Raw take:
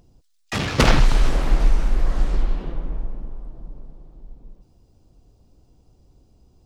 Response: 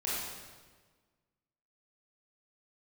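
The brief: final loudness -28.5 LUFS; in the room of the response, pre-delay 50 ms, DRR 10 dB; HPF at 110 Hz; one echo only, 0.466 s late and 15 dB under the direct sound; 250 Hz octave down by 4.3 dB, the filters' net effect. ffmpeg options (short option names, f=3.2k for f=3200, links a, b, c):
-filter_complex "[0:a]highpass=110,equalizer=f=250:t=o:g=-5.5,aecho=1:1:466:0.178,asplit=2[a][b];[1:a]atrim=start_sample=2205,adelay=50[c];[b][c]afir=irnorm=-1:irlink=0,volume=-15.5dB[d];[a][d]amix=inputs=2:normalize=0,volume=-2dB"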